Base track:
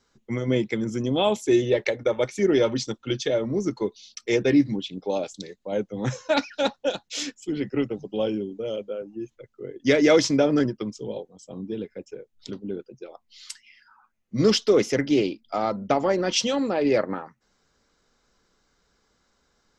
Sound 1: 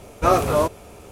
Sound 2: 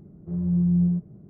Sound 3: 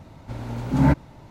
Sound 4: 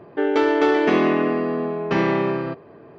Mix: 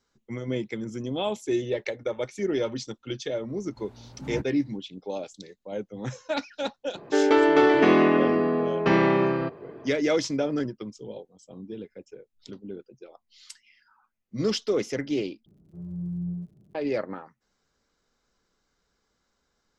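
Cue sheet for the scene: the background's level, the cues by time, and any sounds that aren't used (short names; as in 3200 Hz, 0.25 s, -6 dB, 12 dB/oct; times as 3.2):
base track -6.5 dB
3.48 add 3 -17.5 dB
6.95 add 4 -0.5 dB
15.46 replace with 2 -11 dB + crackle 80/s -49 dBFS
not used: 1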